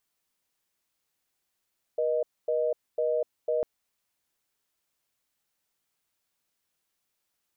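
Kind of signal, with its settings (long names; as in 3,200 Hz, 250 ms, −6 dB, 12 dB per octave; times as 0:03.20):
call progress tone reorder tone, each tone −26.5 dBFS 1.65 s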